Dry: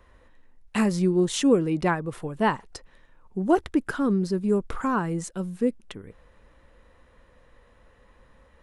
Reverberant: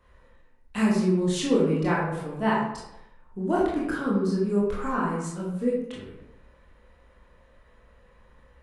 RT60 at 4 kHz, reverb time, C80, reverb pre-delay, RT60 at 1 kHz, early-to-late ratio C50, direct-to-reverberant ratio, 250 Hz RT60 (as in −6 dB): 0.50 s, 0.85 s, 4.5 dB, 19 ms, 0.85 s, 1.0 dB, −6.5 dB, 0.80 s